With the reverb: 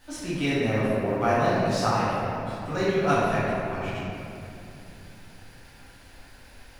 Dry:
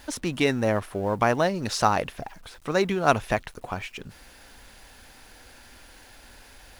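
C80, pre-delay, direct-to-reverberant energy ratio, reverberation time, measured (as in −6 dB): −1.0 dB, 10 ms, −11.0 dB, 2.7 s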